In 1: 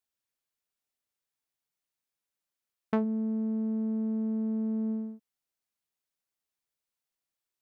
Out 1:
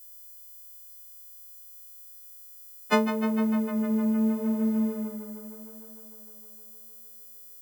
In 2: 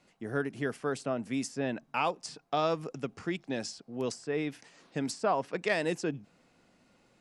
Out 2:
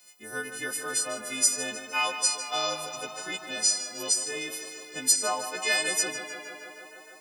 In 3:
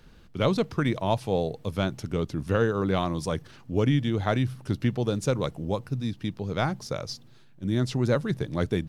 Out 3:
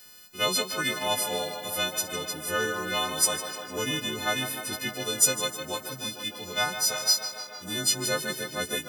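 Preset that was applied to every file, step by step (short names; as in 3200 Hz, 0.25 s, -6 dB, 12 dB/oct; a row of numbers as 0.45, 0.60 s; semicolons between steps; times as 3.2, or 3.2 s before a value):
frequency quantiser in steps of 3 st; RIAA curve recording; tape echo 0.153 s, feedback 84%, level -9 dB, low-pass 4800 Hz; match loudness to -27 LUFS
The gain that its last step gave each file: +10.5, -2.5, -3.0 dB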